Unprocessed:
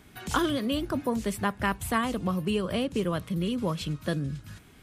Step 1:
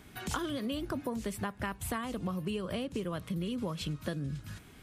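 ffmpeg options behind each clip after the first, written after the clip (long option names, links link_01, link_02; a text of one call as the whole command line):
ffmpeg -i in.wav -af "acompressor=threshold=-32dB:ratio=6" out.wav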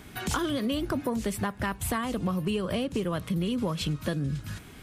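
ffmpeg -i in.wav -af "aeval=exprs='0.119*sin(PI/2*1.41*val(0)/0.119)':channel_layout=same" out.wav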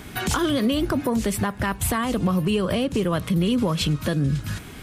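ffmpeg -i in.wav -af "alimiter=limit=-22dB:level=0:latency=1:release=76,volume=8dB" out.wav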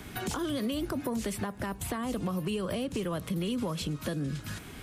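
ffmpeg -i in.wav -filter_complex "[0:a]acrossover=split=200|800|5400[link_01][link_02][link_03][link_04];[link_01]acompressor=threshold=-35dB:ratio=4[link_05];[link_02]acompressor=threshold=-27dB:ratio=4[link_06];[link_03]acompressor=threshold=-36dB:ratio=4[link_07];[link_04]acompressor=threshold=-36dB:ratio=4[link_08];[link_05][link_06][link_07][link_08]amix=inputs=4:normalize=0,volume=-5dB" out.wav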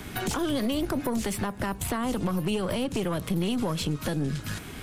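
ffmpeg -i in.wav -af "aeval=exprs='(tanh(20*val(0)+0.5)-tanh(0.5))/20':channel_layout=same,volume=7dB" out.wav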